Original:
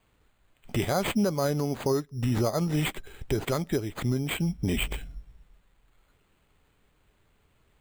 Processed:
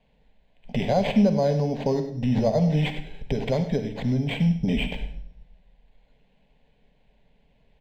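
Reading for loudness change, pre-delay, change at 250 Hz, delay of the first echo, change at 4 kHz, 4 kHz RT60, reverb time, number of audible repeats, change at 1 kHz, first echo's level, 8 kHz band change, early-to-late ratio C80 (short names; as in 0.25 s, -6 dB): +4.0 dB, 40 ms, +5.5 dB, 0.1 s, +0.5 dB, 0.55 s, 0.60 s, 2, +2.5 dB, -14.0 dB, under -10 dB, 11.0 dB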